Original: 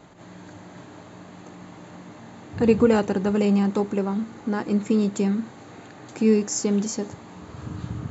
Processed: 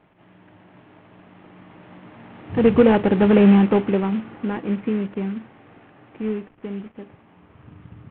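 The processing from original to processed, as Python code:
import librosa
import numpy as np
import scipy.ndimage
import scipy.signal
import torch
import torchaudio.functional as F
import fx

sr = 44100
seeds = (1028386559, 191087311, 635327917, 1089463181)

y = fx.cvsd(x, sr, bps=16000)
y = fx.doppler_pass(y, sr, speed_mps=5, closest_m=2.6, pass_at_s=3.41)
y = F.gain(torch.from_numpy(y), 8.0).numpy()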